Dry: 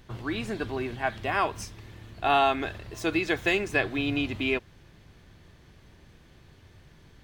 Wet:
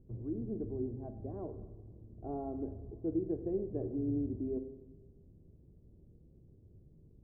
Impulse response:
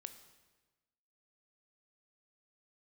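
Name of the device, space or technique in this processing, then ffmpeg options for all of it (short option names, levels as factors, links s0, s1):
next room: -filter_complex "[0:a]lowpass=f=450:w=0.5412,lowpass=f=450:w=1.3066[s0];[1:a]atrim=start_sample=2205[s1];[s0][s1]afir=irnorm=-1:irlink=0"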